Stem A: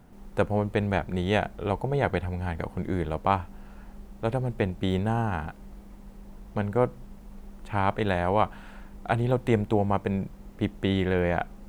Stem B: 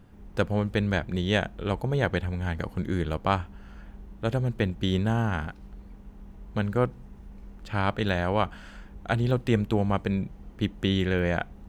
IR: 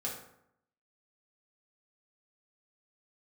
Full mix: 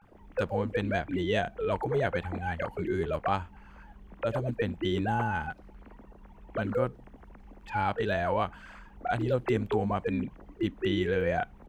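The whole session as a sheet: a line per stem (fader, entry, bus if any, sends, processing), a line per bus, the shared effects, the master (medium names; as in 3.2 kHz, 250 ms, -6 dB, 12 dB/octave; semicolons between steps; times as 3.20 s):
+1.0 dB, 0.00 s, no send, formants replaced by sine waves; compression, threshold -29 dBFS, peak gain reduction 12.5 dB
-7.0 dB, 18 ms, no send, none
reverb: none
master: none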